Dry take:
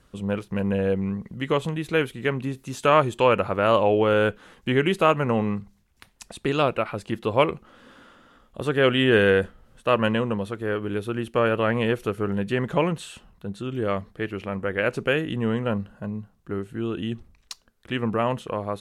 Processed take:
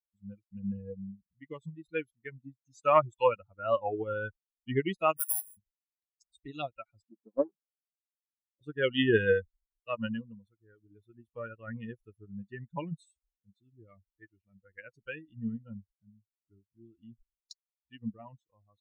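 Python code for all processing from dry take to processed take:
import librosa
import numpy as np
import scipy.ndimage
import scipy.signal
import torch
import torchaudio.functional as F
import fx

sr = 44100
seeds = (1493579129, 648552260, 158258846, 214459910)

y = fx.chain(x, sr, fx.highpass(hz=620.0, slope=12),
    fx.resample_bad(factor=4, down='none', up='zero_stuff'), at=(5.17, 5.57))
y = fx.chain(y, sr, fx.brickwall_bandpass(low_hz=160.0, high_hz=1700.0),
    fx.air_absorb(metres=270.0),
    fx.doppler_dist(depth_ms=0.49), at=(7.09, 8.61))
y = fx.bin_expand(y, sr, power=3.0)
y = fx.upward_expand(y, sr, threshold_db=-46.0, expansion=1.5)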